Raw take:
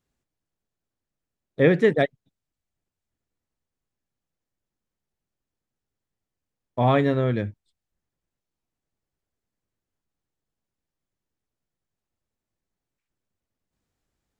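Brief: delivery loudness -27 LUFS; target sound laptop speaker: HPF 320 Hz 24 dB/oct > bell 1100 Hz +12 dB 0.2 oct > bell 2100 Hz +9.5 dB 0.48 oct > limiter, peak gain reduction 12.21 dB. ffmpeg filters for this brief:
-af "highpass=f=320:w=0.5412,highpass=f=320:w=1.3066,equalizer=f=1.1k:t=o:w=0.2:g=12,equalizer=f=2.1k:t=o:w=0.48:g=9.5,volume=2dB,alimiter=limit=-15.5dB:level=0:latency=1"

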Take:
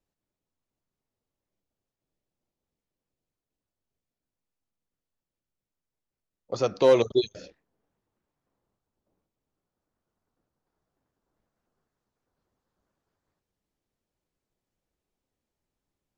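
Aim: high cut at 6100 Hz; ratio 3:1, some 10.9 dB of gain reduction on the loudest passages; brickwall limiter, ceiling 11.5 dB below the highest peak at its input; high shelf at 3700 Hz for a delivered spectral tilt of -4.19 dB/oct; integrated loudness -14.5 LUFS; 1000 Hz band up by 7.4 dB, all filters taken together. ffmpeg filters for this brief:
-af "lowpass=6.1k,equalizer=f=1k:t=o:g=8,highshelf=f=3.7k:g=8.5,acompressor=threshold=-26dB:ratio=3,volume=22dB,alimiter=limit=-2dB:level=0:latency=1"

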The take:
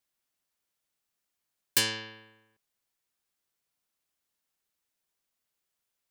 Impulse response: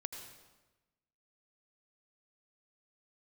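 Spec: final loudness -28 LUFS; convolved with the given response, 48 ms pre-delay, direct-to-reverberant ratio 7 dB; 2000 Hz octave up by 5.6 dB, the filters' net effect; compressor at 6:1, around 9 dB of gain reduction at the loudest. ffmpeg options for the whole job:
-filter_complex "[0:a]equalizer=f=2k:t=o:g=7,acompressor=threshold=-28dB:ratio=6,asplit=2[a][b];[1:a]atrim=start_sample=2205,adelay=48[c];[b][c]afir=irnorm=-1:irlink=0,volume=-5.5dB[d];[a][d]amix=inputs=2:normalize=0,volume=5.5dB"

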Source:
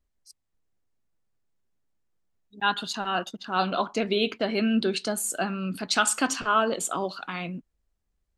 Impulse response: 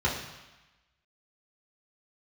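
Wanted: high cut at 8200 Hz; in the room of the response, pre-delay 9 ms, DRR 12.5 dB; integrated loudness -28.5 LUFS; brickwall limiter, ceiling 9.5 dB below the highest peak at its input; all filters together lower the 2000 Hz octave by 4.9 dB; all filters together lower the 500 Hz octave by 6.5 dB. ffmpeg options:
-filter_complex "[0:a]lowpass=8.2k,equalizer=f=500:t=o:g=-8.5,equalizer=f=2k:t=o:g=-7,alimiter=limit=-21.5dB:level=0:latency=1,asplit=2[a][b];[1:a]atrim=start_sample=2205,adelay=9[c];[b][c]afir=irnorm=-1:irlink=0,volume=-24dB[d];[a][d]amix=inputs=2:normalize=0,volume=4dB"

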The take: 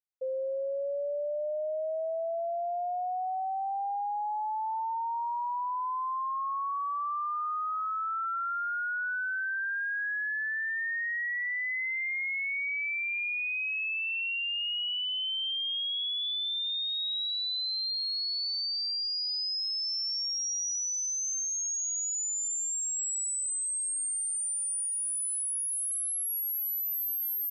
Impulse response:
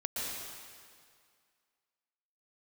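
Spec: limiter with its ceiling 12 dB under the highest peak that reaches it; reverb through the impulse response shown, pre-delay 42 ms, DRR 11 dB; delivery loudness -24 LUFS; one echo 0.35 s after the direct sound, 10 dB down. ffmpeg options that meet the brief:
-filter_complex "[0:a]alimiter=level_in=17dB:limit=-24dB:level=0:latency=1,volume=-17dB,aecho=1:1:350:0.316,asplit=2[a][b];[1:a]atrim=start_sample=2205,adelay=42[c];[b][c]afir=irnorm=-1:irlink=0,volume=-15.5dB[d];[a][d]amix=inputs=2:normalize=0,volume=17dB"

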